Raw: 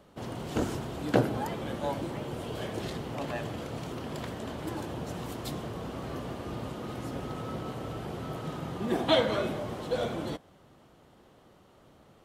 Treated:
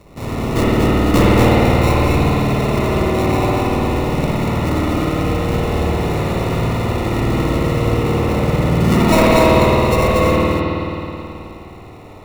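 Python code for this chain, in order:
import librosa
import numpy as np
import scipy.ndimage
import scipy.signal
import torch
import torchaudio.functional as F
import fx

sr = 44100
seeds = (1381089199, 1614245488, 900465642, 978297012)

p1 = fx.cvsd(x, sr, bps=16000)
p2 = fx.sample_hold(p1, sr, seeds[0], rate_hz=1600.0, jitter_pct=0)
p3 = fx.rev_spring(p2, sr, rt60_s=3.1, pass_ms=(53,), chirp_ms=75, drr_db=-6.5)
p4 = fx.fold_sine(p3, sr, drive_db=8, ceiling_db=-8.0)
p5 = p3 + (p4 * librosa.db_to_amplitude(-5.5))
p6 = fx.low_shelf(p5, sr, hz=96.0, db=9.0)
y = p6 + fx.echo_single(p6, sr, ms=236, db=-3.5, dry=0)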